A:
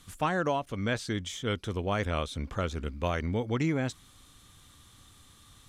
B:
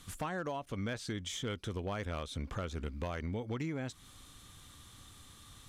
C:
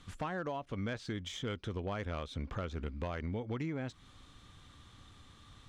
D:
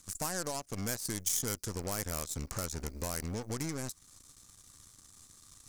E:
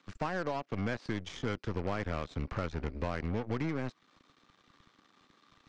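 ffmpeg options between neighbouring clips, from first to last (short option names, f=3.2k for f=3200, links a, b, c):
-af "acompressor=threshold=-36dB:ratio=5,volume=31dB,asoftclip=hard,volume=-31dB,volume=1dB"
-af "adynamicsmooth=sensitivity=5:basefreq=4.7k"
-af "aeval=exprs='0.0335*(cos(1*acos(clip(val(0)/0.0335,-1,1)))-cos(1*PI/2))+0.00168*(cos(3*acos(clip(val(0)/0.0335,-1,1)))-cos(3*PI/2))+0.00237*(cos(7*acos(clip(val(0)/0.0335,-1,1)))-cos(7*PI/2))+0.00299*(cos(8*acos(clip(val(0)/0.0335,-1,1)))-cos(8*PI/2))':c=same,aexciter=amount=6.4:drive=9.2:freq=5k"
-filter_complex "[0:a]lowpass=f=3.2k:w=0.5412,lowpass=f=3.2k:w=1.3066,acrossover=split=200|1000|2000[a][b][c][d];[a]aeval=exprs='sgn(val(0))*max(abs(val(0))-0.00106,0)':c=same[e];[e][b][c][d]amix=inputs=4:normalize=0,volume=4dB"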